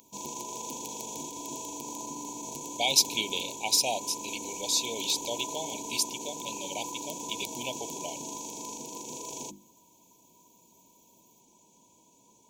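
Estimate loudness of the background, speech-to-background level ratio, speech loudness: -37.5 LUFS, 7.5 dB, -30.0 LUFS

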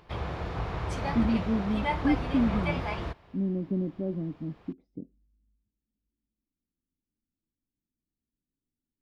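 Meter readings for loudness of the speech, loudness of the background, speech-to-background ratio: -30.5 LUFS, -33.0 LUFS, 2.5 dB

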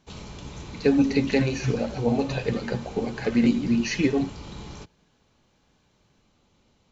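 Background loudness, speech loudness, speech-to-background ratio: -40.5 LUFS, -24.5 LUFS, 16.0 dB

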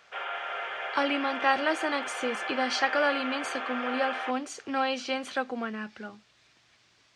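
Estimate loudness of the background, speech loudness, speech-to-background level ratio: -34.0 LUFS, -30.0 LUFS, 4.0 dB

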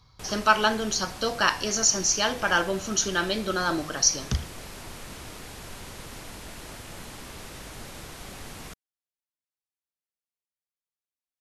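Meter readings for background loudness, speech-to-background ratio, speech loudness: -41.0 LUFS, 16.5 dB, -24.5 LUFS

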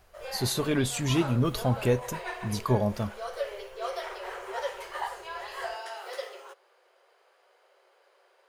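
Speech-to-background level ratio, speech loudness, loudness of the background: 9.5 dB, -28.5 LUFS, -38.0 LUFS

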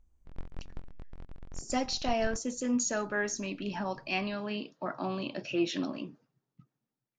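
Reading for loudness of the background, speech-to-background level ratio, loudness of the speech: -50.0 LUFS, 16.5 dB, -33.5 LUFS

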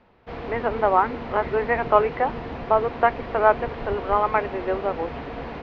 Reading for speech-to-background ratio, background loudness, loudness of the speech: 10.0 dB, -33.5 LUFS, -23.5 LUFS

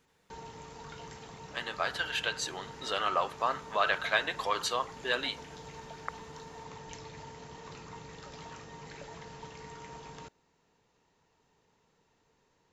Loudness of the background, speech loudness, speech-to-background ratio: -47.0 LUFS, -32.0 LUFS, 15.0 dB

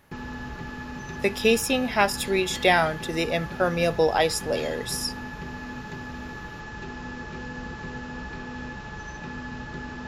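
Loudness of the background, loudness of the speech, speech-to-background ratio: -36.5 LUFS, -24.0 LUFS, 12.5 dB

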